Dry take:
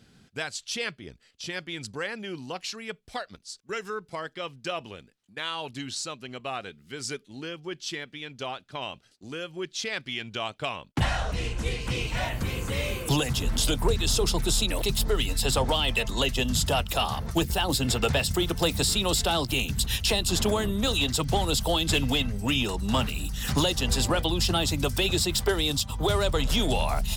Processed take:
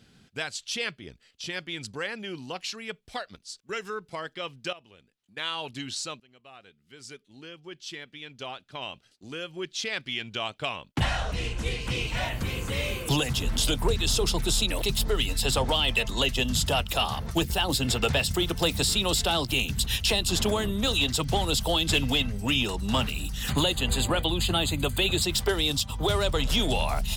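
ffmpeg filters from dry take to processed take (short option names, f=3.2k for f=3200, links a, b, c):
-filter_complex "[0:a]asettb=1/sr,asplit=3[a][b][c];[a]atrim=end=23.504[d];[b]atrim=start=23.5:end=25.22,asetpts=PTS-STARTPTS,afade=t=in:d=0.004:c=qsin,afade=t=out:st=1.716:d=0.004:c=qsin,asuperstop=centerf=5500:order=4:qfactor=2.9[e];[c]atrim=start=25.216[f];[d][e]acrossfade=d=0.004:c1=hsin:c2=qsin[g];[g][f]acrossfade=d=0.004:c1=qsin:c2=hsin,asplit=3[h][i][j];[h]atrim=end=4.73,asetpts=PTS-STARTPTS,afade=t=out:st=4.726:d=0.004:c=hsin:silence=0.16788[k];[i]atrim=start=4.73:end=6.2,asetpts=PTS-STARTPTS,afade=t=in:d=0.69:c=qua:silence=0.16788,afade=t=out:st=1.466:d=0.004:c=hsin:silence=0.0749894[l];[j]atrim=start=6.2,asetpts=PTS-STARTPTS,afade=t=in:d=3.39:silence=0.0749894[m];[k][l][m]concat=n=3:v=0:a=1,equalizer=f=3k:w=1.4:g=3,volume=-1dB"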